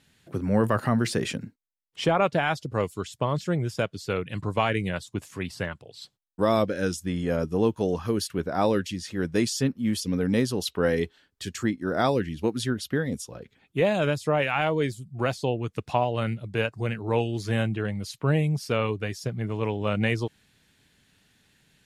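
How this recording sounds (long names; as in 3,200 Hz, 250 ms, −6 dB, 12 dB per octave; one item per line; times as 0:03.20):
background noise floor −69 dBFS
spectral slope −5.5 dB per octave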